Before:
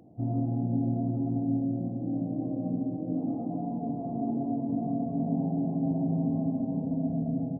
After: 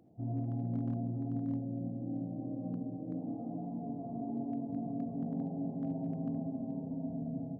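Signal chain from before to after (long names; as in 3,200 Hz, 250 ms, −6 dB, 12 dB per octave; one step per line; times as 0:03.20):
reverb whose tail is shaped and stops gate 100 ms rising, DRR 7.5 dB
hard clipping −19.5 dBFS, distortion −33 dB
level −8.5 dB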